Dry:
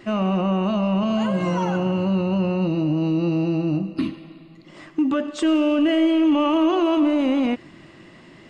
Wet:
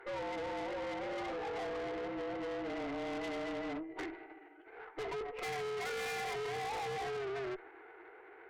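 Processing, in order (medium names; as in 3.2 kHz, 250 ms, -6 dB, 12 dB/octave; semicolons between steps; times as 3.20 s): mistuned SSB +130 Hz 340–3300 Hz; formant shift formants -6 st; valve stage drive 34 dB, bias 0.45; trim -3.5 dB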